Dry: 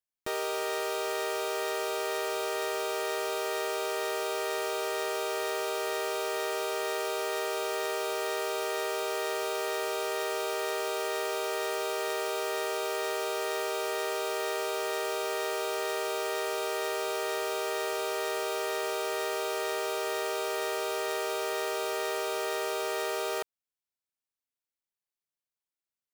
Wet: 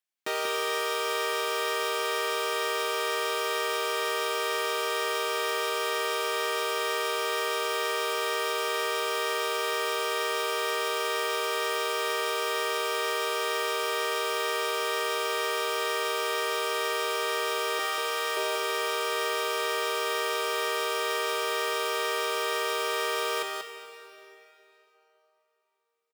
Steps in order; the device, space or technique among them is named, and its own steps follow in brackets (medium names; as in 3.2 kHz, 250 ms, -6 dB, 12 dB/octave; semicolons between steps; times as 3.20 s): 17.79–18.37 s: high-pass 540 Hz 12 dB/octave; PA in a hall (high-pass 170 Hz 24 dB/octave; peaking EQ 2.5 kHz +6 dB 2.1 oct; delay 187 ms -5 dB; reverberation RT60 3.3 s, pre-delay 17 ms, DRR 7.5 dB)